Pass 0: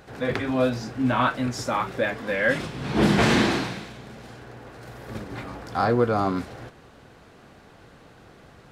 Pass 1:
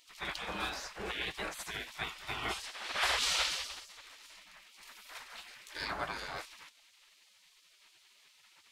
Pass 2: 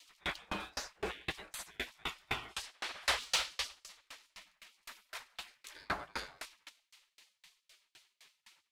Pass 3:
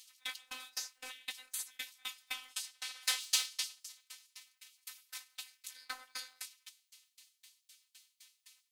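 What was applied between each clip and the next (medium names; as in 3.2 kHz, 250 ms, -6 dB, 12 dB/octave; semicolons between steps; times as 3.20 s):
spectral gate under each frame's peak -20 dB weak
saturation -25.5 dBFS, distortion -18 dB; sawtooth tremolo in dB decaying 3.9 Hz, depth 35 dB; trim +7 dB
pre-emphasis filter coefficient 0.97; robot voice 256 Hz; trim +8 dB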